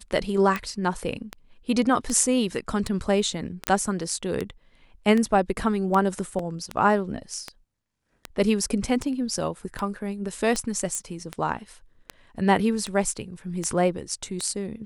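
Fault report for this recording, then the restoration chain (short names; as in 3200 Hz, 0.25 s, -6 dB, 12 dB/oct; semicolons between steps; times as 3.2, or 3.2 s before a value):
tick 78 rpm -14 dBFS
3.67 pop -5 dBFS
6.39 gap 3.1 ms
10.95 pop -16 dBFS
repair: de-click; interpolate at 6.39, 3.1 ms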